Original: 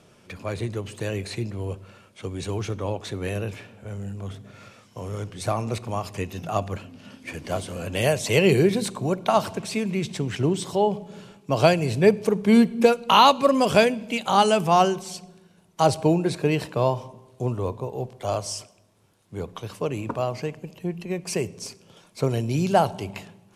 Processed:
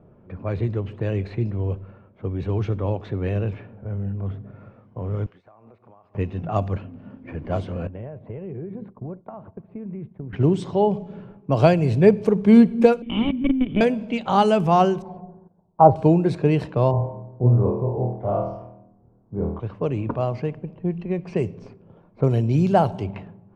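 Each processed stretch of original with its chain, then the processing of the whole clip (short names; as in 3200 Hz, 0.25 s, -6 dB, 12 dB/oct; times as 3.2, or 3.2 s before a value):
5.26–6.15 HPF 1500 Hz 6 dB/oct + compressor 12:1, threshold -46 dBFS
7.87–10.33 expander -25 dBFS + compressor 8:1, threshold -33 dBFS + air absorption 490 m
13.02–13.81 companded quantiser 2-bit + vocal tract filter i
15.02–15.96 synth low-pass 870 Hz, resonance Q 2.6 + gate -54 dBFS, range -10 dB
16.91–19.6 LPF 1000 Hz + flutter echo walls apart 4.3 m, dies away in 0.67 s
whole clip: LPF 3900 Hz 6 dB/oct; low-pass opened by the level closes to 990 Hz, open at -19.5 dBFS; tilt -2 dB/oct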